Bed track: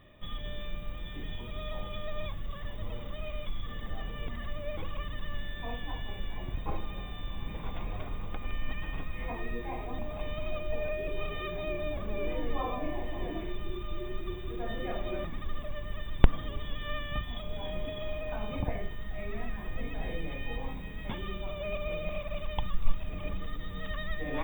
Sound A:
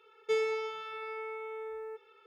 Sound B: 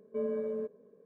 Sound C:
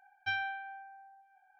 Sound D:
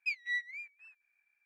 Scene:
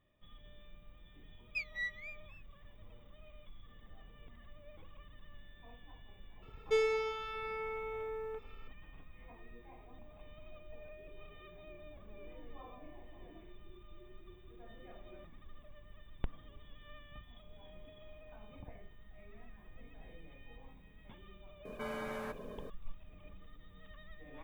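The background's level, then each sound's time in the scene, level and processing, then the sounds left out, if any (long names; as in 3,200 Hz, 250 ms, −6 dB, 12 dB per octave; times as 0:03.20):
bed track −18.5 dB
0:01.49: mix in D −4.5 dB
0:06.42: mix in A −0.5 dB
0:21.65: mix in B −5 dB + every bin compressed towards the loudest bin 4 to 1
not used: C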